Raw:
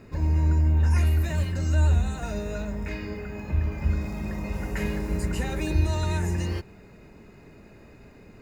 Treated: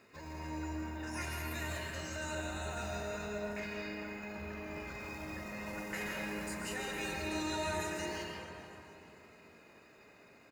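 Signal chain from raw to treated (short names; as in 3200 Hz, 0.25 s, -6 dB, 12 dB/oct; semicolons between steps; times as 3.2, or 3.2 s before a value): HPF 1100 Hz 6 dB/oct; tempo 0.8×; on a send: frequency-shifting echo 0.444 s, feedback 45%, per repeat +42 Hz, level -18 dB; on the sum: digital reverb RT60 2.9 s, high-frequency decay 0.35×, pre-delay 95 ms, DRR -1 dB; gain -4 dB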